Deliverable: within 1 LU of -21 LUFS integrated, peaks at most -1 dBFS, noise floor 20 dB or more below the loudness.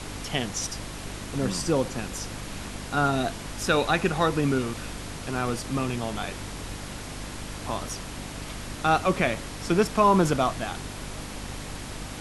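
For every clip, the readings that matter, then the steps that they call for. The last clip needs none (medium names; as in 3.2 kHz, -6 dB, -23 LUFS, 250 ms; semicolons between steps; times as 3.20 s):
hum 50 Hz; highest harmonic 300 Hz; hum level -38 dBFS; noise floor -38 dBFS; noise floor target -48 dBFS; loudness -28.0 LUFS; peak level -8.0 dBFS; loudness target -21.0 LUFS
-> de-hum 50 Hz, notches 6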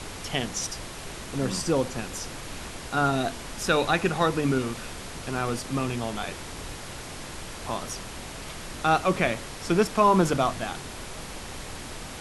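hum not found; noise floor -39 dBFS; noise floor target -48 dBFS
-> noise print and reduce 9 dB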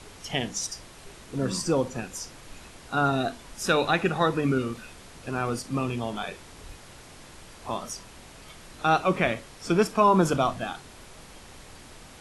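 noise floor -48 dBFS; loudness -27.0 LUFS; peak level -8.0 dBFS; loudness target -21.0 LUFS
-> trim +6 dB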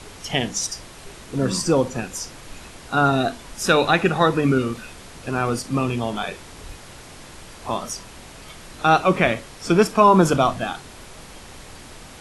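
loudness -21.0 LUFS; peak level -2.0 dBFS; noise floor -42 dBFS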